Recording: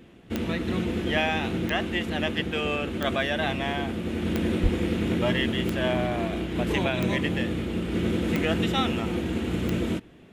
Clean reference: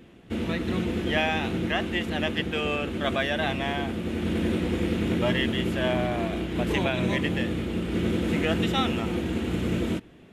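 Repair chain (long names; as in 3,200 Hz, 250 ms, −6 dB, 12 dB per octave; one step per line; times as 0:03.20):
click removal
high-pass at the plosives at 0:04.62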